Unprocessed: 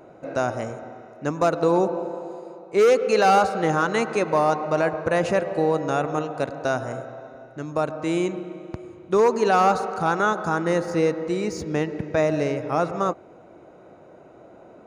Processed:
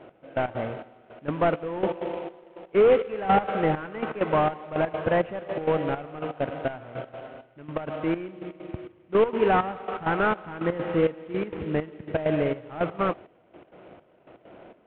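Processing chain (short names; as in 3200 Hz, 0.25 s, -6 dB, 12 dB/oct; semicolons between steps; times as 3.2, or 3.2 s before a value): CVSD 16 kbps; step gate "x...x.xx" 164 bpm -12 dB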